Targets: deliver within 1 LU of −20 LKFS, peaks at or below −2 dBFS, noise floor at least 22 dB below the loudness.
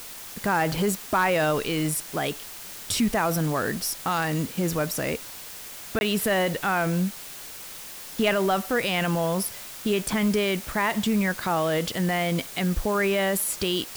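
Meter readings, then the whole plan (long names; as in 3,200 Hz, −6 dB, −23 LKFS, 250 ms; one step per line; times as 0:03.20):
number of dropouts 1; longest dropout 21 ms; background noise floor −40 dBFS; target noise floor −48 dBFS; integrated loudness −25.5 LKFS; sample peak −12.0 dBFS; target loudness −20.0 LKFS
→ repair the gap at 0:05.99, 21 ms
noise reduction from a noise print 8 dB
level +5.5 dB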